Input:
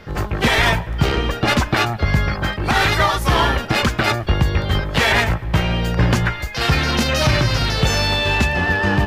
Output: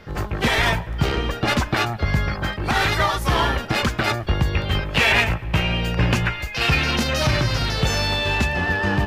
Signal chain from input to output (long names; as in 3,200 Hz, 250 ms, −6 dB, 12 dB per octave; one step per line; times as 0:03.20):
0:04.53–0:06.96: parametric band 2,600 Hz +9.5 dB 0.35 octaves
level −3.5 dB